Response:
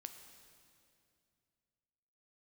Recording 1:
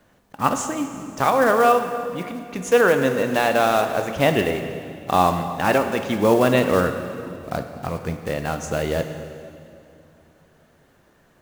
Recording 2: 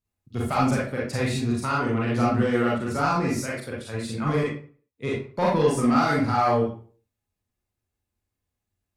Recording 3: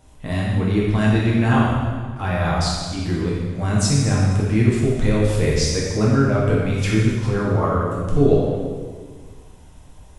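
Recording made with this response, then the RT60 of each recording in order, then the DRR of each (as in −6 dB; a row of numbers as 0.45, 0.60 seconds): 1; 2.5, 0.45, 1.6 seconds; 6.5, −6.0, −5.5 decibels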